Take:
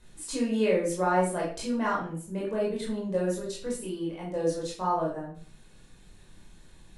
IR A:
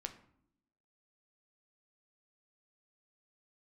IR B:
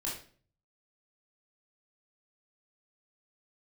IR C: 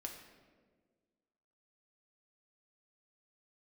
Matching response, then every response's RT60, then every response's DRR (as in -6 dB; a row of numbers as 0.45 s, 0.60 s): B; 0.70 s, 0.45 s, 1.6 s; 6.0 dB, -5.0 dB, 1.5 dB